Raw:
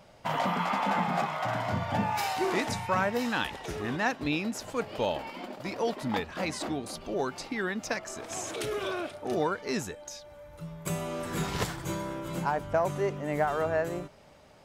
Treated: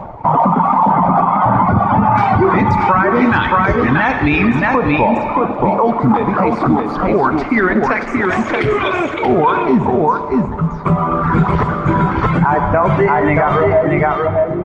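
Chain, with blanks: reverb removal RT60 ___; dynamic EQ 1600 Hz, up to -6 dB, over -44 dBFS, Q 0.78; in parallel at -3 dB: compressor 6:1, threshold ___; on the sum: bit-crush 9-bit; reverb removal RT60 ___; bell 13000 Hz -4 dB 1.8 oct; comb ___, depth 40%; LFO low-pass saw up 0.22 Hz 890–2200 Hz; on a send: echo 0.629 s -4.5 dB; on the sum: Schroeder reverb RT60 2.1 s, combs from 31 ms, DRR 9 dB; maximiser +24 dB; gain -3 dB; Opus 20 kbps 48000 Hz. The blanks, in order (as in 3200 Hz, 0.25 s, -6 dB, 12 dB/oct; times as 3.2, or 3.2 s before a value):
1.6 s, -45 dBFS, 1 s, 0.9 ms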